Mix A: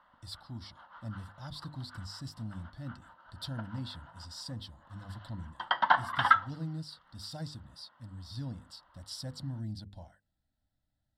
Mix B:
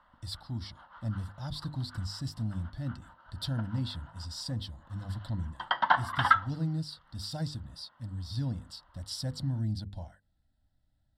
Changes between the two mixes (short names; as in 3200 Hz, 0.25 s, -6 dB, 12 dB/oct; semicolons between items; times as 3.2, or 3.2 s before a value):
speech +4.0 dB; master: add low shelf 100 Hz +7.5 dB